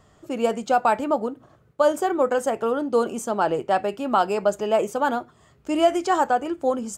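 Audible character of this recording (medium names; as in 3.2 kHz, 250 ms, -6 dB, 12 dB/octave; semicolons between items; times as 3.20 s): noise floor -57 dBFS; spectral tilt -3.0 dB/octave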